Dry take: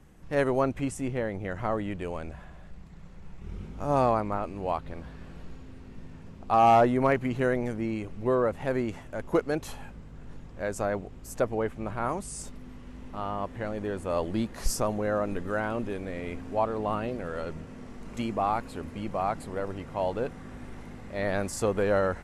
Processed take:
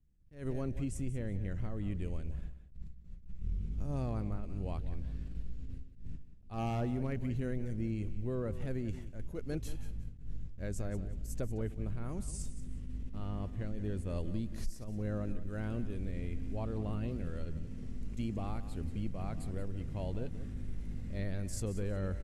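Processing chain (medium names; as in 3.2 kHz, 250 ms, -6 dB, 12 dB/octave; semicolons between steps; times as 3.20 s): gate with hold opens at -35 dBFS; amplifier tone stack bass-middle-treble 10-0-1; compression, threshold -46 dBFS, peak gain reduction 19.5 dB; on a send: feedback delay 181 ms, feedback 25%, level -13 dB; on the sum: attacks held to a fixed rise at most 150 dB/s; trim +15 dB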